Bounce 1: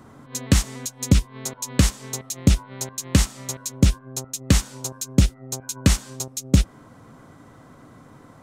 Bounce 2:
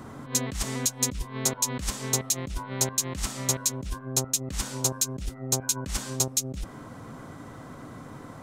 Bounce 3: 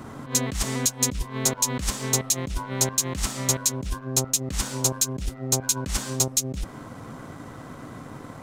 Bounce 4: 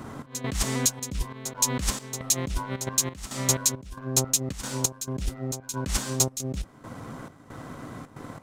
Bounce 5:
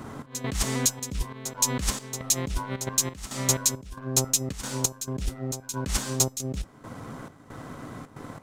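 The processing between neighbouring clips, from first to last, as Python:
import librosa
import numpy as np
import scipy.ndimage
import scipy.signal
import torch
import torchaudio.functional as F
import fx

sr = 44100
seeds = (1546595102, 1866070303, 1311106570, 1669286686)

y1 = fx.over_compress(x, sr, threshold_db=-26.0, ratio=-1.0)
y1 = y1 * librosa.db_to_amplitude(-1.5)
y2 = fx.leveller(y1, sr, passes=1)
y3 = fx.step_gate(y2, sr, bpm=136, pattern='xx..xxxxx.xx..xx', floor_db=-12.0, edge_ms=4.5)
y4 = fx.comb_fb(y3, sr, f0_hz=430.0, decay_s=0.22, harmonics='all', damping=0.0, mix_pct=40)
y4 = y4 * librosa.db_to_amplitude(4.0)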